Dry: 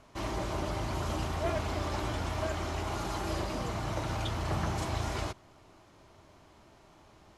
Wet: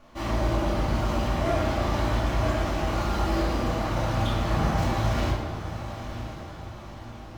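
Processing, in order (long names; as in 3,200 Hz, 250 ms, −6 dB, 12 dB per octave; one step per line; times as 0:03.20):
running median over 5 samples
feedback delay with all-pass diffusion 977 ms, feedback 50%, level −10.5 dB
rectangular room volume 400 cubic metres, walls mixed, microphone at 2.4 metres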